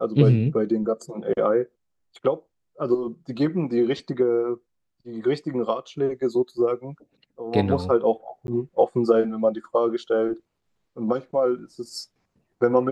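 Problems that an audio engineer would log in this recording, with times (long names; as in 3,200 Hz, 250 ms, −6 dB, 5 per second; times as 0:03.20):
0:08.47–0:08.48: drop-out 11 ms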